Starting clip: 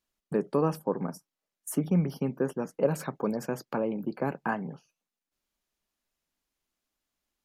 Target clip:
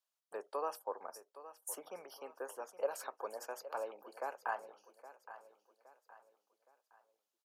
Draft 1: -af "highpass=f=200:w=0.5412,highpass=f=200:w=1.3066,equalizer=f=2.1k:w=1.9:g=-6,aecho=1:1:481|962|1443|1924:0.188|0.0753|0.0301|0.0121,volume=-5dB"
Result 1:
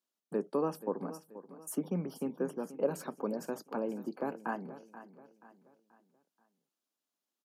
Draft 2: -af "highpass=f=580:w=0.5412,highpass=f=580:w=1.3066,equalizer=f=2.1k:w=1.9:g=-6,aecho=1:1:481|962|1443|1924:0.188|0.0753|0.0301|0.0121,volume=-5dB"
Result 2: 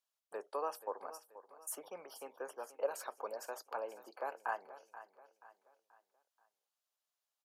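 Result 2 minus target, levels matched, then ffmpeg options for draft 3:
echo 0.336 s early
-af "highpass=f=580:w=0.5412,highpass=f=580:w=1.3066,equalizer=f=2.1k:w=1.9:g=-6,aecho=1:1:817|1634|2451|3268:0.188|0.0753|0.0301|0.0121,volume=-5dB"

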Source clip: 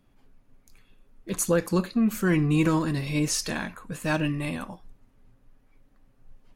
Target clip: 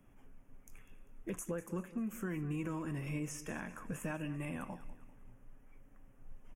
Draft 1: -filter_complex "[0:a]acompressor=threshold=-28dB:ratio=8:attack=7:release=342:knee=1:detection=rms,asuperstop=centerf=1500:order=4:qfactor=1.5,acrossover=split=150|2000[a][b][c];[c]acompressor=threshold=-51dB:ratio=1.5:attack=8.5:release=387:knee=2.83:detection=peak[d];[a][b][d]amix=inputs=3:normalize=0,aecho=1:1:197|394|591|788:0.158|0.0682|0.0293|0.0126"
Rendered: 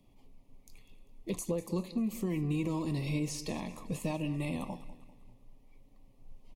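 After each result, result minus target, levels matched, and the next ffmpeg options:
compressor: peak gain reduction -6 dB; 4000 Hz band +5.5 dB
-filter_complex "[0:a]acompressor=threshold=-35dB:ratio=8:attack=7:release=342:knee=1:detection=rms,asuperstop=centerf=1500:order=4:qfactor=1.5,acrossover=split=150|2000[a][b][c];[c]acompressor=threshold=-51dB:ratio=1.5:attack=8.5:release=387:knee=2.83:detection=peak[d];[a][b][d]amix=inputs=3:normalize=0,aecho=1:1:197|394|591|788:0.158|0.0682|0.0293|0.0126"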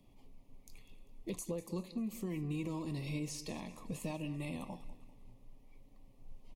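4000 Hz band +7.0 dB
-filter_complex "[0:a]acompressor=threshold=-35dB:ratio=8:attack=7:release=342:knee=1:detection=rms,asuperstop=centerf=4200:order=4:qfactor=1.5,acrossover=split=150|2000[a][b][c];[c]acompressor=threshold=-51dB:ratio=1.5:attack=8.5:release=387:knee=2.83:detection=peak[d];[a][b][d]amix=inputs=3:normalize=0,aecho=1:1:197|394|591|788:0.158|0.0682|0.0293|0.0126"

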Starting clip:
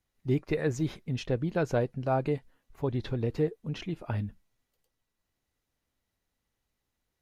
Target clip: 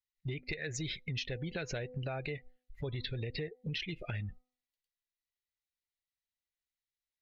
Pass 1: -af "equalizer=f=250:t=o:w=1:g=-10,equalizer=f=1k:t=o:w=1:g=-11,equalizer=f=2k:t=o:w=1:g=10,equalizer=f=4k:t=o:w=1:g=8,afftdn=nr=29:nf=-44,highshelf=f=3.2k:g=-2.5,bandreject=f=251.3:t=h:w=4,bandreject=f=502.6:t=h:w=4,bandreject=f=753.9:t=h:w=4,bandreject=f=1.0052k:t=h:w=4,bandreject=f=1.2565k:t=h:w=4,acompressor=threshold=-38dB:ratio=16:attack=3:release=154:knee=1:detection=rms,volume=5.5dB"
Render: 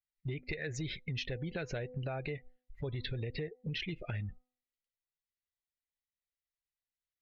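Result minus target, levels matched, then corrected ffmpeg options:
8000 Hz band -5.0 dB
-af "equalizer=f=250:t=o:w=1:g=-10,equalizer=f=1k:t=o:w=1:g=-11,equalizer=f=2k:t=o:w=1:g=10,equalizer=f=4k:t=o:w=1:g=8,afftdn=nr=29:nf=-44,highshelf=f=3.2k:g=7,bandreject=f=251.3:t=h:w=4,bandreject=f=502.6:t=h:w=4,bandreject=f=753.9:t=h:w=4,bandreject=f=1.0052k:t=h:w=4,bandreject=f=1.2565k:t=h:w=4,acompressor=threshold=-38dB:ratio=16:attack=3:release=154:knee=1:detection=rms,volume=5.5dB"

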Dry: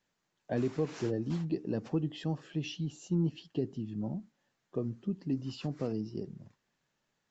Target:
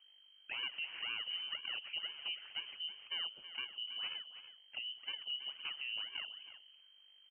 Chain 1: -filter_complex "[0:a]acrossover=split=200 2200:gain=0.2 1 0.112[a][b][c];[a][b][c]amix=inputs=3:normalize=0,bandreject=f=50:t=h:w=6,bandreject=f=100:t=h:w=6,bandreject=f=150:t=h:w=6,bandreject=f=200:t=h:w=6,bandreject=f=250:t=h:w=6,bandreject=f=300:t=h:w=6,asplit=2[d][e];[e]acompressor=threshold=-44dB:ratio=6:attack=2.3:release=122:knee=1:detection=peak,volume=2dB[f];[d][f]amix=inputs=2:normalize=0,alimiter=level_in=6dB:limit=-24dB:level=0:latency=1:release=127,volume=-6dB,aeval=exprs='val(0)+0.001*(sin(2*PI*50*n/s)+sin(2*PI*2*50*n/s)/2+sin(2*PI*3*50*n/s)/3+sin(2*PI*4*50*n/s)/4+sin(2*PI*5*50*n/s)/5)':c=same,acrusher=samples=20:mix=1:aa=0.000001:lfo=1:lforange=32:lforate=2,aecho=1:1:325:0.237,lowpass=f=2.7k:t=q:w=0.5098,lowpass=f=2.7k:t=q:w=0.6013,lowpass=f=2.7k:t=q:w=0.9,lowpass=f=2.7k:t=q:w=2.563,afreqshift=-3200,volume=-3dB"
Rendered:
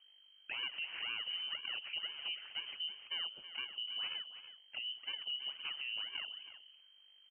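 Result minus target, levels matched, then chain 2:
compressor: peak gain reduction -9.5 dB
-filter_complex "[0:a]acrossover=split=200 2200:gain=0.2 1 0.112[a][b][c];[a][b][c]amix=inputs=3:normalize=0,bandreject=f=50:t=h:w=6,bandreject=f=100:t=h:w=6,bandreject=f=150:t=h:w=6,bandreject=f=200:t=h:w=6,bandreject=f=250:t=h:w=6,bandreject=f=300:t=h:w=6,asplit=2[d][e];[e]acompressor=threshold=-55.5dB:ratio=6:attack=2.3:release=122:knee=1:detection=peak,volume=2dB[f];[d][f]amix=inputs=2:normalize=0,alimiter=level_in=6dB:limit=-24dB:level=0:latency=1:release=127,volume=-6dB,aeval=exprs='val(0)+0.001*(sin(2*PI*50*n/s)+sin(2*PI*2*50*n/s)/2+sin(2*PI*3*50*n/s)/3+sin(2*PI*4*50*n/s)/4+sin(2*PI*5*50*n/s)/5)':c=same,acrusher=samples=20:mix=1:aa=0.000001:lfo=1:lforange=32:lforate=2,aecho=1:1:325:0.237,lowpass=f=2.7k:t=q:w=0.5098,lowpass=f=2.7k:t=q:w=0.6013,lowpass=f=2.7k:t=q:w=0.9,lowpass=f=2.7k:t=q:w=2.563,afreqshift=-3200,volume=-3dB"

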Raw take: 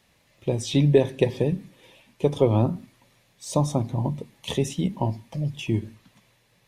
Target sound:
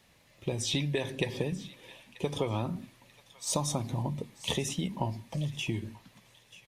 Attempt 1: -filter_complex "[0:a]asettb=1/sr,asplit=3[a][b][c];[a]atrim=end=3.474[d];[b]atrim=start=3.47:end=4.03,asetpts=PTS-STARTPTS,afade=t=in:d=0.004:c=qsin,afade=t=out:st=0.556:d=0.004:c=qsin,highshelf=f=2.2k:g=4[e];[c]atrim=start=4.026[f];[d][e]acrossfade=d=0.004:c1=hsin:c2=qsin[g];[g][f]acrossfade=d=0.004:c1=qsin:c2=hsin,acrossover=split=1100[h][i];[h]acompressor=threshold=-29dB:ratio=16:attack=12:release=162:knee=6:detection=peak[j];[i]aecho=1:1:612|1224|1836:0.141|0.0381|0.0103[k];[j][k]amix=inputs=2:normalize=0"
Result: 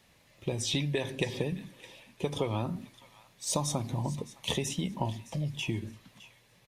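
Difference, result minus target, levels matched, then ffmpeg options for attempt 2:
echo 0.323 s early
-filter_complex "[0:a]asettb=1/sr,asplit=3[a][b][c];[a]atrim=end=3.474[d];[b]atrim=start=3.47:end=4.03,asetpts=PTS-STARTPTS,afade=t=in:d=0.004:c=qsin,afade=t=out:st=0.556:d=0.004:c=qsin,highshelf=f=2.2k:g=4[e];[c]atrim=start=4.026[f];[d][e]acrossfade=d=0.004:c1=hsin:c2=qsin[g];[g][f]acrossfade=d=0.004:c1=qsin:c2=hsin,acrossover=split=1100[h][i];[h]acompressor=threshold=-29dB:ratio=16:attack=12:release=162:knee=6:detection=peak[j];[i]aecho=1:1:935|1870|2805:0.141|0.0381|0.0103[k];[j][k]amix=inputs=2:normalize=0"

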